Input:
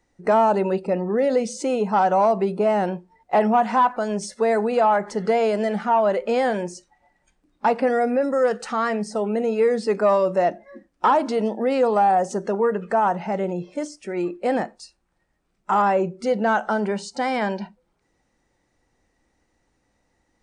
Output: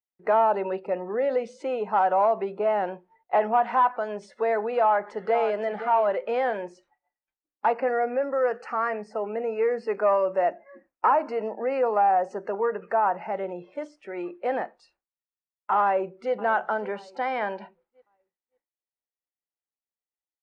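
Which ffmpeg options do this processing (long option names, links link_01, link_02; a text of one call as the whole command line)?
ffmpeg -i in.wav -filter_complex "[0:a]asplit=2[link_01][link_02];[link_02]afade=type=in:start_time=4.76:duration=0.01,afade=type=out:start_time=5.59:duration=0.01,aecho=0:1:520|1040:0.298538|0.0298538[link_03];[link_01][link_03]amix=inputs=2:normalize=0,asettb=1/sr,asplit=3[link_04][link_05][link_06];[link_04]atrim=end=7.734[link_07];[link_05]atrim=start=7.73:end=13.32,asetpts=PTS-STARTPTS,afade=type=in:duration=0.004:curve=qsin,afade=type=out:start_time=5.586:duration=0.004:curve=qsin,asuperstop=centerf=3500:order=8:qfactor=2.6[link_08];[link_06]atrim=start=13.316[link_09];[link_07][link_08]acrossfade=duration=0.004:curve1=hsin:curve2=qsin[link_10];[link_10][link_09]acrossfade=duration=0.004:curve1=qsin:curve2=hsin,asplit=2[link_11][link_12];[link_12]afade=type=in:start_time=15.82:duration=0.01,afade=type=out:start_time=16.33:duration=0.01,aecho=0:1:560|1120|1680|2240:0.125893|0.0566516|0.0254932|0.011472[link_13];[link_11][link_13]amix=inputs=2:normalize=0,agate=range=-33dB:threshold=-49dB:ratio=3:detection=peak,acrossover=split=380 3100:gain=0.178 1 0.0708[link_14][link_15][link_16];[link_14][link_15][link_16]amix=inputs=3:normalize=0,volume=-2.5dB" out.wav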